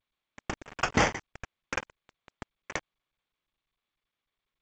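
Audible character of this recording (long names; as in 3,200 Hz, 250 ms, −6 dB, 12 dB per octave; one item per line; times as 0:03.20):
a quantiser's noise floor 6 bits, dither none
tremolo triangle 4.1 Hz, depth 70%
aliases and images of a low sample rate 4,000 Hz, jitter 0%
G.722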